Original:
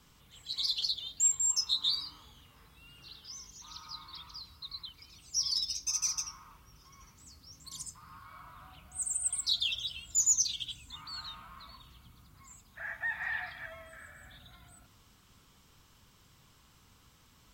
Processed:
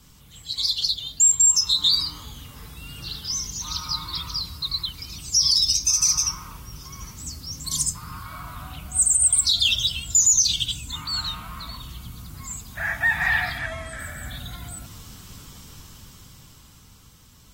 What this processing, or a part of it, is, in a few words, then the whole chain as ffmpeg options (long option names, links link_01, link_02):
low-bitrate web radio: -filter_complex "[0:a]asettb=1/sr,asplit=3[link_01][link_02][link_03];[link_01]atrim=end=13.584[link_04];[link_02]atrim=start=13.58:end=14,asetpts=PTS-STARTPTS,afade=type=in:duration=0.004:curve=qsin,afade=type=out:start_time=0.416:duration=0.004:curve=qsin,lowpass=frequency=10000:width=0.5412,lowpass=frequency=10000:width=1.3066[link_05];[link_03]atrim=start=13.996[link_06];[link_04][link_05]acrossfade=duration=0.004:curve1=hsin:curve2=qsin[link_07];[link_07][link_06]acrossfade=duration=0.004:curve1=qsin:curve2=hsin,bass=frequency=250:gain=8,treble=frequency=4000:gain=8,dynaudnorm=framelen=200:gausssize=17:maxgain=10dB,alimiter=limit=-13.5dB:level=0:latency=1:release=55,volume=3.5dB" -ar 44100 -c:a aac -b:a 48k